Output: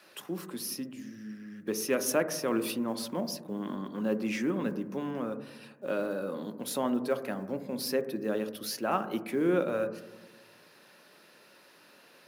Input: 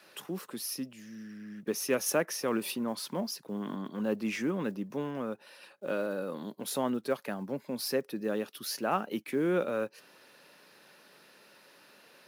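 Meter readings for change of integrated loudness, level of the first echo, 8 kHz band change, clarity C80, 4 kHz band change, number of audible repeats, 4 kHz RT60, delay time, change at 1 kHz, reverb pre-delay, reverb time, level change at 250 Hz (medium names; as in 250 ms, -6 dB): +1.0 dB, no echo, 0.0 dB, 14.5 dB, 0.0 dB, no echo, 0.95 s, no echo, +0.5 dB, 3 ms, 1.1 s, +2.0 dB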